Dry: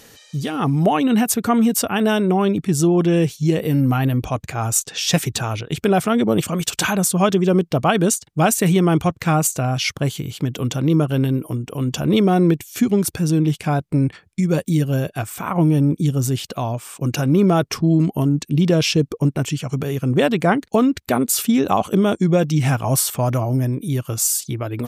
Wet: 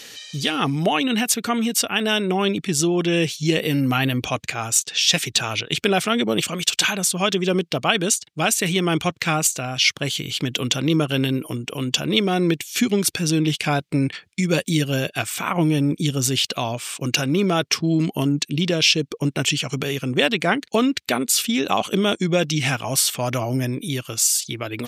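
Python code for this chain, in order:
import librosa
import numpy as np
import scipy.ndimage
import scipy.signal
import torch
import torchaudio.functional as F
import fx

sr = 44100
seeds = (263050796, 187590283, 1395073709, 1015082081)

y = fx.weighting(x, sr, curve='D')
y = fx.rider(y, sr, range_db=3, speed_s=0.5)
y = F.gain(torch.from_numpy(y), -3.0).numpy()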